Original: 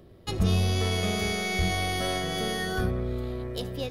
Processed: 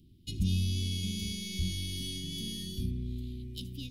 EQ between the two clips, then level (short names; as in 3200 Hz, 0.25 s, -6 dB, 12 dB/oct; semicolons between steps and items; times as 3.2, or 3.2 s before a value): elliptic band-stop 280–2900 Hz, stop band 50 dB; bell 1600 Hz -12 dB 0.27 oct; -4.5 dB